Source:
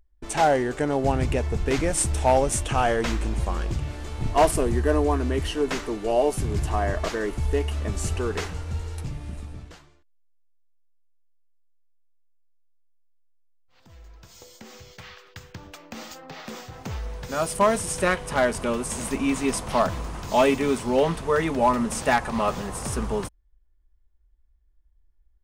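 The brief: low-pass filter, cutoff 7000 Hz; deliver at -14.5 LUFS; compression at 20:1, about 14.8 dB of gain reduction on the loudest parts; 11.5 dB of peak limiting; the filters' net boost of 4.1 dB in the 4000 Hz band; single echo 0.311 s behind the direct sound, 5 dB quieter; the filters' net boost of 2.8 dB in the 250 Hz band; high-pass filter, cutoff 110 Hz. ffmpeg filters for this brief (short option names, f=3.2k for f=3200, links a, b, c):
-af "highpass=110,lowpass=7k,equalizer=f=250:t=o:g=3.5,equalizer=f=4k:t=o:g=6,acompressor=threshold=-28dB:ratio=20,alimiter=level_in=3.5dB:limit=-24dB:level=0:latency=1,volume=-3.5dB,aecho=1:1:311:0.562,volume=21.5dB"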